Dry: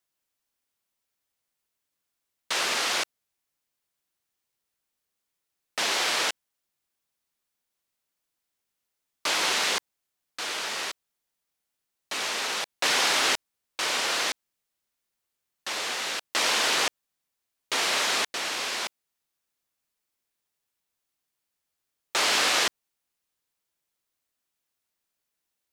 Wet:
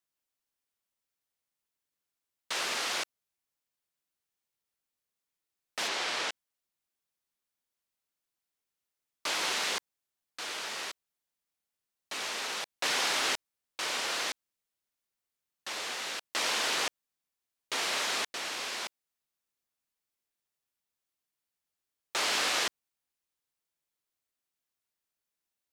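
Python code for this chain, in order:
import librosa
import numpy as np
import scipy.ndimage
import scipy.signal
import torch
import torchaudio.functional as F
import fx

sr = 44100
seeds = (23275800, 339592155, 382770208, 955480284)

y = fx.air_absorb(x, sr, metres=50.0, at=(5.87, 6.3), fade=0.02)
y = y * librosa.db_to_amplitude(-6.0)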